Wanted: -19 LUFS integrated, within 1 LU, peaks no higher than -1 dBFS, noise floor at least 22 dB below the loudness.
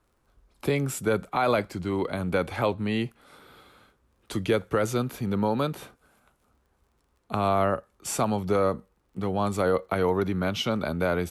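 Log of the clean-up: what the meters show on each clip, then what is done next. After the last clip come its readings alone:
tick rate 21 per s; loudness -27.5 LUFS; peak level -12.5 dBFS; loudness target -19.0 LUFS
-> de-click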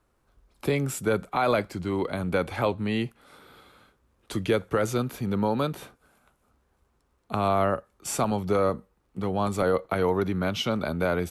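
tick rate 0 per s; loudness -27.5 LUFS; peak level -12.5 dBFS; loudness target -19.0 LUFS
-> trim +8.5 dB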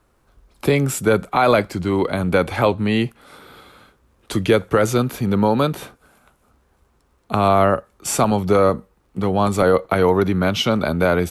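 loudness -19.0 LUFS; peak level -4.0 dBFS; noise floor -62 dBFS

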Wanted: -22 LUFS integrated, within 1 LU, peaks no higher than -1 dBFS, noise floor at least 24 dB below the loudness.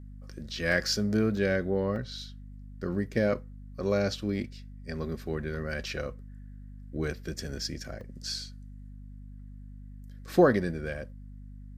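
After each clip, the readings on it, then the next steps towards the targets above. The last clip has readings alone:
dropouts 5; longest dropout 1.6 ms; hum 50 Hz; highest harmonic 250 Hz; hum level -41 dBFS; loudness -30.5 LUFS; peak level -9.5 dBFS; loudness target -22.0 LUFS
-> interpolate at 0.72/1.37/1.96/5.55/8.01 s, 1.6 ms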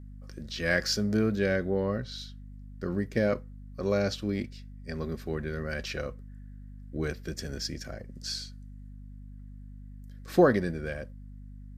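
dropouts 0; hum 50 Hz; highest harmonic 250 Hz; hum level -41 dBFS
-> hum notches 50/100/150/200/250 Hz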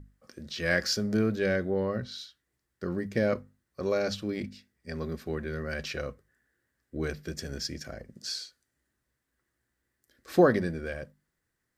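hum not found; loudness -31.0 LUFS; peak level -9.0 dBFS; loudness target -22.0 LUFS
-> trim +9 dB; peak limiter -1 dBFS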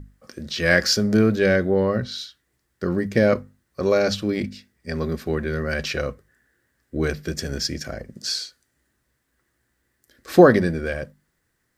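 loudness -22.0 LUFS; peak level -1.0 dBFS; noise floor -73 dBFS

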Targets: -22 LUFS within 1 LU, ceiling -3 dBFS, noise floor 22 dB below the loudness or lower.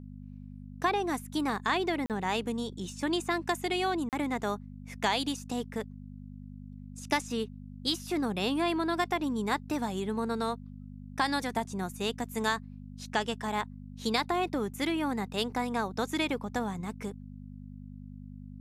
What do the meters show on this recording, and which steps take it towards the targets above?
dropouts 2; longest dropout 38 ms; hum 50 Hz; highest harmonic 250 Hz; hum level -43 dBFS; loudness -32.0 LUFS; peak level -15.0 dBFS; loudness target -22.0 LUFS
-> interpolate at 2.06/4.09 s, 38 ms; de-hum 50 Hz, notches 5; trim +10 dB

